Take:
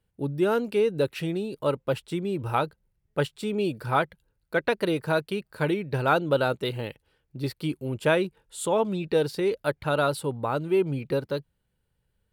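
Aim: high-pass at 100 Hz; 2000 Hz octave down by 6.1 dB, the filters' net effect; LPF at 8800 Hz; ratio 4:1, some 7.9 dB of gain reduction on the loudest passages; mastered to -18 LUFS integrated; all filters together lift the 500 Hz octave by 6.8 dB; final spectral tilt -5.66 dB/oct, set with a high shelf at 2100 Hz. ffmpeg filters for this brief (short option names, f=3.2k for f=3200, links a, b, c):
-af "highpass=100,lowpass=8.8k,equalizer=f=500:t=o:g=9,equalizer=f=2k:t=o:g=-8.5,highshelf=f=2.1k:g=-3.5,acompressor=threshold=-21dB:ratio=4,volume=9dB"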